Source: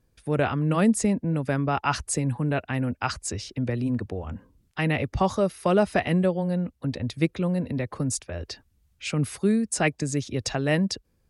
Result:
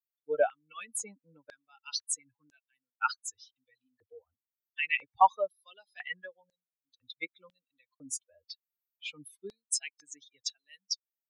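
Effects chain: expander on every frequency bin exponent 3; step-sequenced high-pass 2 Hz 620–6500 Hz

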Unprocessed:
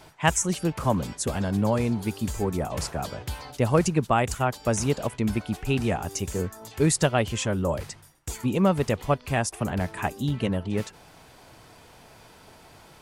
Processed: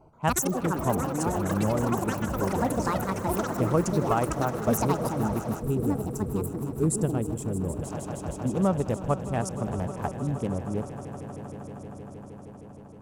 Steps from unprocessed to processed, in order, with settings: local Wiener filter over 25 samples; ever faster or slower copies 128 ms, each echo +7 st, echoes 3; on a send: echo with a slow build-up 156 ms, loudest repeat 5, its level -16.5 dB; on the sum: time-frequency box 5.60–7.83 s, 500–7100 Hz -10 dB; high-order bell 2.8 kHz -8 dB; trim -3 dB

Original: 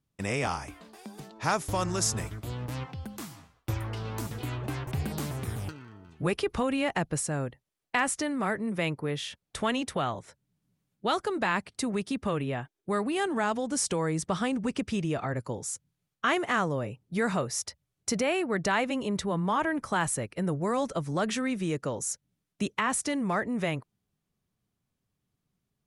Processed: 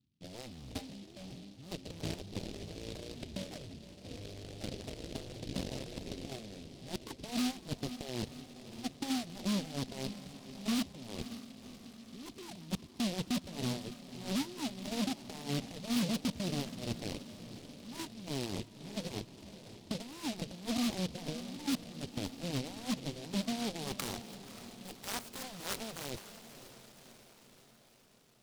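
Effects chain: high-pass 65 Hz 24 dB/octave; peaking EQ 1.4 kHz +12 dB 0.77 oct; band-stop 1.2 kHz, Q 18; in parallel at -1 dB: level held to a coarse grid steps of 24 dB; on the sum: transient shaper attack -7 dB, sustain +5 dB; reverse; compression 4:1, threshold -34 dBFS, peak gain reduction 17 dB; reverse; low-pass sweep 280 Hz -> 11 kHz, 21.40–22.44 s; tape speed -9%; Chebyshev shaper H 7 -10 dB, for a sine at -22.5 dBFS; distance through air 210 m; echo that smears into a reverb 550 ms, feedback 59%, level -12 dB; delay time shaken by noise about 3.6 kHz, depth 0.18 ms; trim -4 dB

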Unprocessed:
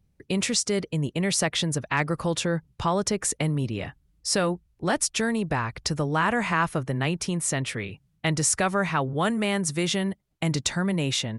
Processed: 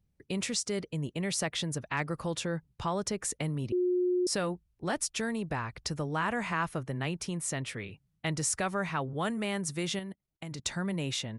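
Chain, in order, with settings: 3.72–4.27 s: bleep 360 Hz -17 dBFS; 9.99–10.66 s: level held to a coarse grid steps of 16 dB; trim -7.5 dB

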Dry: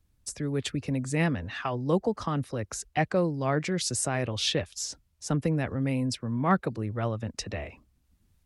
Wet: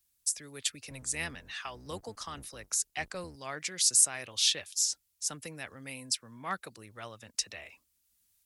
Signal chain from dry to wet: 0.89–3.36 s: octave divider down 1 oct, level 0 dB; pre-emphasis filter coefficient 0.97; trim +7 dB

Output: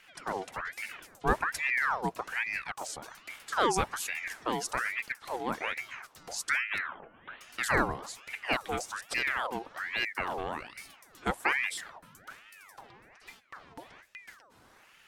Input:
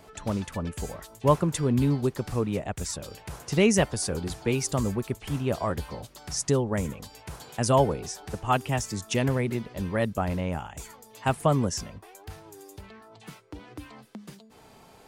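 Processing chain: 6.78–7.41 s: steep low-pass 2.4 kHz 96 dB/octave; ring modulator with a swept carrier 1.4 kHz, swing 60%, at 1.2 Hz; trim -3.5 dB

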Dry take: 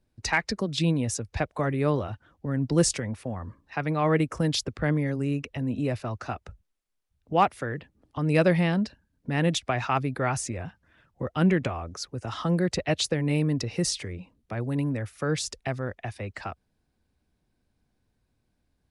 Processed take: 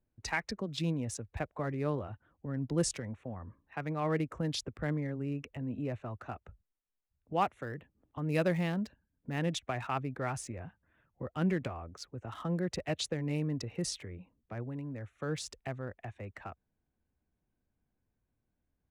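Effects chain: local Wiener filter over 9 samples; 7.41–9.39 s: treble shelf 9.3 kHz +11.5 dB; 14.62–15.16 s: compression, threshold -28 dBFS, peak gain reduction 5.5 dB; trim -8.5 dB

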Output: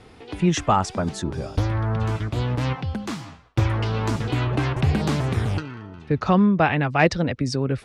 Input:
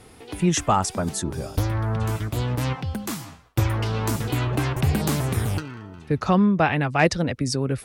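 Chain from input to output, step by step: low-pass 4.9 kHz 12 dB/octave; trim +1 dB

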